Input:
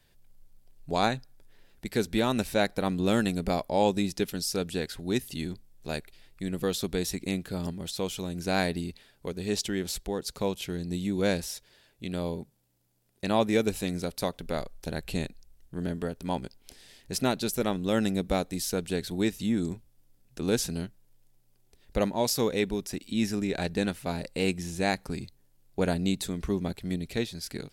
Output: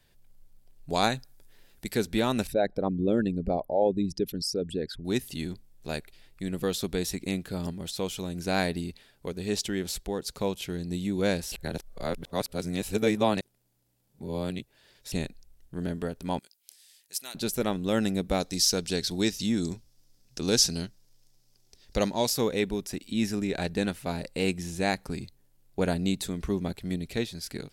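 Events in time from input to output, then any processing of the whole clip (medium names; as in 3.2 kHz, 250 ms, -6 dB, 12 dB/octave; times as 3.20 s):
0.90–1.95 s: treble shelf 4.4 kHz +8 dB
2.47–5.05 s: resonances exaggerated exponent 2
11.52–15.12 s: reverse
16.39–17.35 s: differentiator
18.40–22.27 s: peaking EQ 5.3 kHz +14 dB 0.93 oct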